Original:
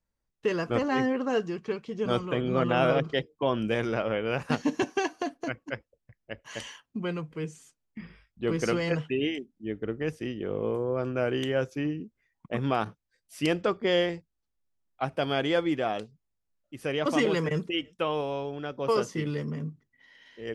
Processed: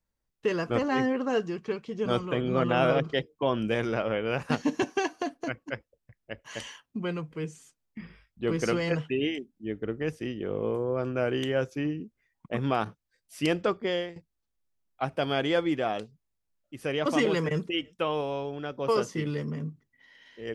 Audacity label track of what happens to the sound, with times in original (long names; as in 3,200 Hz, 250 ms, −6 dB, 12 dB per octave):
13.700000	14.160000	fade out, to −14.5 dB